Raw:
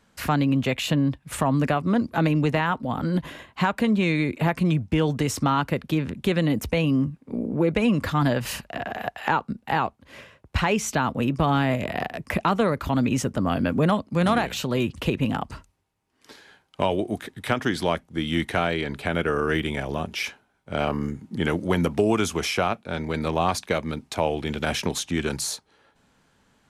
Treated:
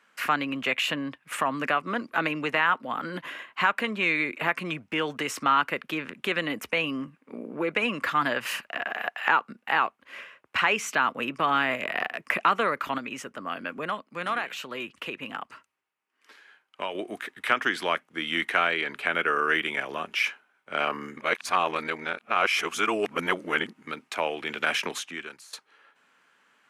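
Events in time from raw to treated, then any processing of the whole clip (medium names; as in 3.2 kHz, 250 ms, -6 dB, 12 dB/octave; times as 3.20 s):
12.98–16.95 s: gain -6 dB
21.17–23.87 s: reverse
24.93–25.53 s: fade out quadratic, to -18.5 dB
whole clip: de-esser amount 45%; high-pass 340 Hz 12 dB/octave; high-order bell 1.8 kHz +9 dB; trim -4.5 dB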